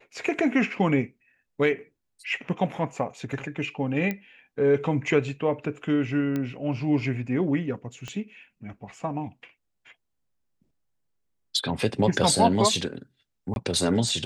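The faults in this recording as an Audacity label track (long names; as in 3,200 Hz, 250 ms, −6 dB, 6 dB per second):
4.110000	4.110000	click −16 dBFS
6.360000	6.360000	click −17 dBFS
8.080000	8.080000	click −22 dBFS
13.540000	13.560000	drop-out 21 ms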